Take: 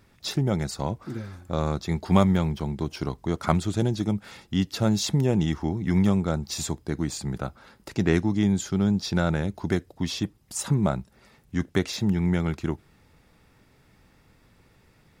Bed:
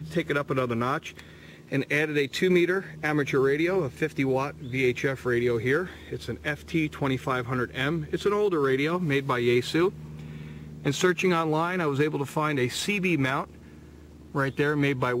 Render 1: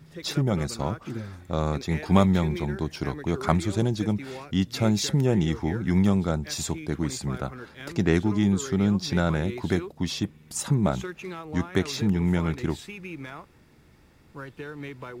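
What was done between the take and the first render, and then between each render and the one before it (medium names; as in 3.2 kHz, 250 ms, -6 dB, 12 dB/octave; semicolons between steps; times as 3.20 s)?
add bed -13.5 dB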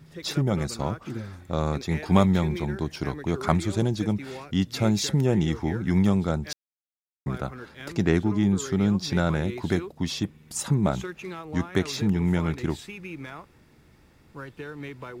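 6.53–7.26 s: mute; 8.11–8.58 s: peaking EQ 6.3 kHz -4.5 dB 2.8 oct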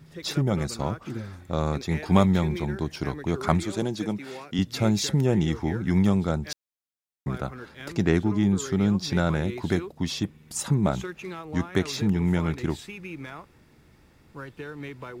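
3.63–4.59 s: Bessel high-pass 210 Hz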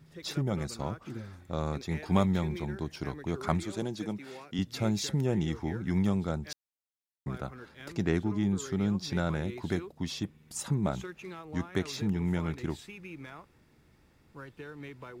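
trim -6.5 dB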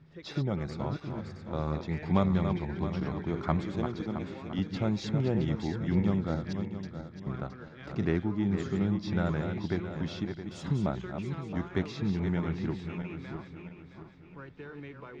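backward echo that repeats 334 ms, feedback 60%, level -7 dB; distance through air 190 m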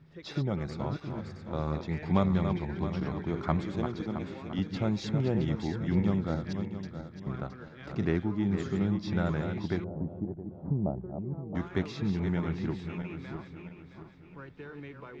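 9.84–11.55 s: Chebyshev low-pass 740 Hz, order 3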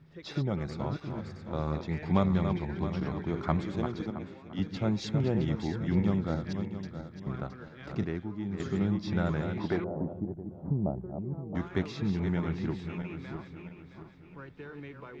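4.10–5.24 s: three bands expanded up and down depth 70%; 8.04–8.60 s: gain -6.5 dB; 9.59–10.13 s: overdrive pedal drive 17 dB, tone 1.1 kHz, clips at -16 dBFS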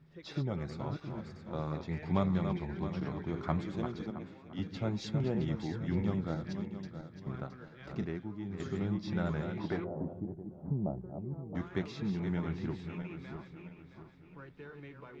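flange 0.75 Hz, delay 4.6 ms, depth 3.6 ms, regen -69%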